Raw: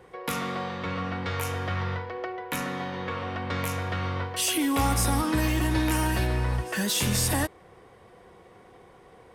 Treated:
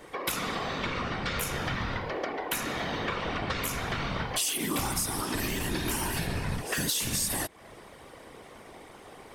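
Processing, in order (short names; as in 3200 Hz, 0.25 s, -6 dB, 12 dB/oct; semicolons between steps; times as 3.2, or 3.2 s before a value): high shelf 2300 Hz +10 dB; compressor 5:1, threshold -31 dBFS, peak gain reduction 14.5 dB; whisperiser; gain +2.5 dB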